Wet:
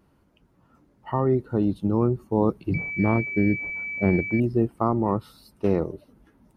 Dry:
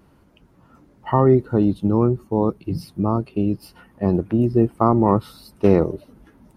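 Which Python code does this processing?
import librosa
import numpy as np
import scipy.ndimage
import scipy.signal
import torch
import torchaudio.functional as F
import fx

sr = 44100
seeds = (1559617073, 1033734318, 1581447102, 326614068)

y = fx.rider(x, sr, range_db=4, speed_s=0.5)
y = fx.pwm(y, sr, carrier_hz=2300.0, at=(2.74, 4.4))
y = y * 10.0 ** (-4.0 / 20.0)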